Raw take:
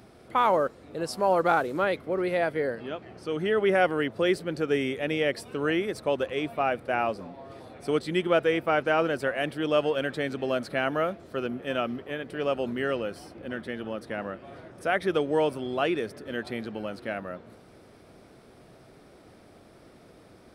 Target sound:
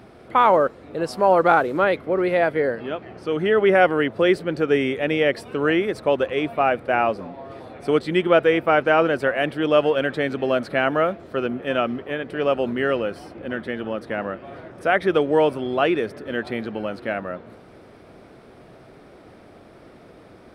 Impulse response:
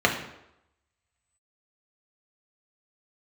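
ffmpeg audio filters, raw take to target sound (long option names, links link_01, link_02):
-af "bass=frequency=250:gain=-2,treble=frequency=4000:gain=-9,volume=7dB"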